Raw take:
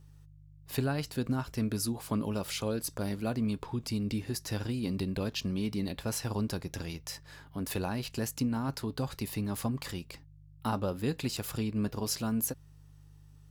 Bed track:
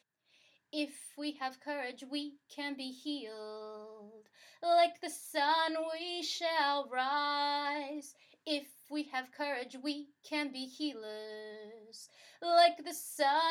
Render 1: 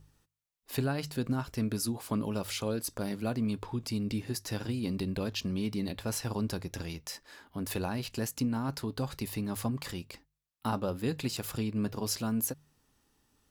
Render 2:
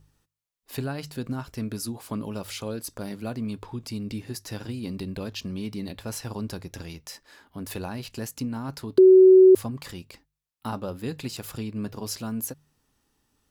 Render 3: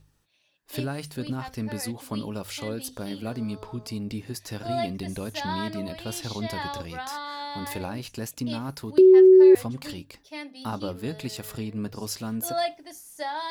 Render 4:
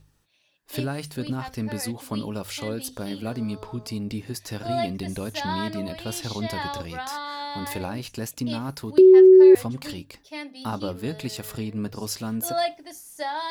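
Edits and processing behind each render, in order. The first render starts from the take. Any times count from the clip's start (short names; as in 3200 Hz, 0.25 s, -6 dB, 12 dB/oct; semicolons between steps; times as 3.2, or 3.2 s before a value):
de-hum 50 Hz, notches 3
8.98–9.55 bleep 375 Hz -9 dBFS
add bed track -2 dB
gain +2 dB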